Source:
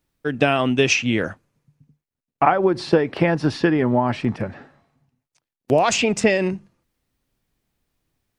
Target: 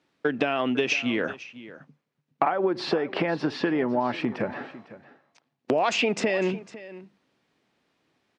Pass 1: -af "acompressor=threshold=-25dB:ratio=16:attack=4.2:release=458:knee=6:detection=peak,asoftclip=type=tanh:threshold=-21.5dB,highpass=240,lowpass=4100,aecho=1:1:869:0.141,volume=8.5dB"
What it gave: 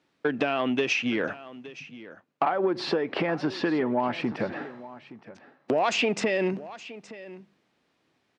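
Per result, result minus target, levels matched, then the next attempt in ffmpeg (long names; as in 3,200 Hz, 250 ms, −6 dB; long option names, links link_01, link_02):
echo 366 ms late; soft clipping: distortion +11 dB
-af "acompressor=threshold=-25dB:ratio=16:attack=4.2:release=458:knee=6:detection=peak,asoftclip=type=tanh:threshold=-21.5dB,highpass=240,lowpass=4100,aecho=1:1:503:0.141,volume=8.5dB"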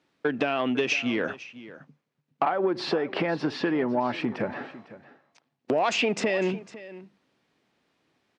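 soft clipping: distortion +11 dB
-af "acompressor=threshold=-25dB:ratio=16:attack=4.2:release=458:knee=6:detection=peak,asoftclip=type=tanh:threshold=-13.5dB,highpass=240,lowpass=4100,aecho=1:1:503:0.141,volume=8.5dB"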